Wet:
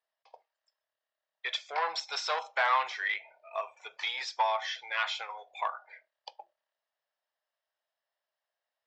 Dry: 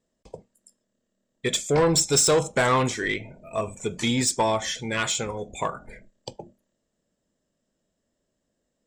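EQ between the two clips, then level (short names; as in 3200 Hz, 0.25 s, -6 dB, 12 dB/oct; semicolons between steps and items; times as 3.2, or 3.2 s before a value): elliptic band-pass 760–5200 Hz, stop band 50 dB; air absorption 140 m; -1.5 dB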